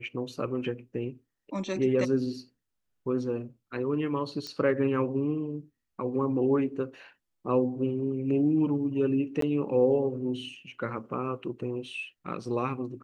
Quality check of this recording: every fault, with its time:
0:04.47: click −23 dBFS
0:09.41–0:09.42: drop-out 13 ms

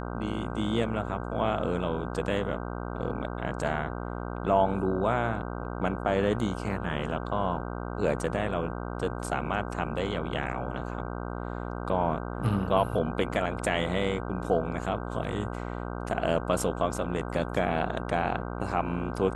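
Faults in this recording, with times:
mains buzz 60 Hz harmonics 26 −35 dBFS

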